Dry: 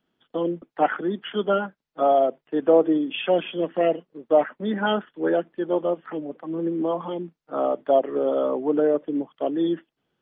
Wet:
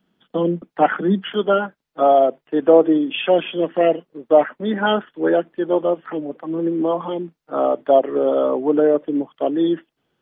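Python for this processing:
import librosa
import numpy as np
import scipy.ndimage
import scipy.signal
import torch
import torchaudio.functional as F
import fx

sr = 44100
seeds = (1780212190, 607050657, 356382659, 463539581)

y = fx.peak_eq(x, sr, hz=190.0, db=fx.steps((0.0, 11.5), (1.34, -3.0)), octaves=0.31)
y = y * 10.0 ** (5.0 / 20.0)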